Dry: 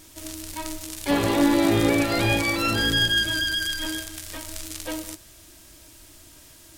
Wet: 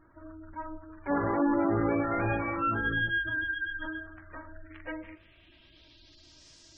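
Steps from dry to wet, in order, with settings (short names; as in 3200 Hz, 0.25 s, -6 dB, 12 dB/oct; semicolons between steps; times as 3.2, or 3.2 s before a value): low-pass sweep 1400 Hz -> 5400 Hz, 4.37–6.49; spectral gate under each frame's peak -20 dB strong; de-hum 46.1 Hz, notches 38; gain -7 dB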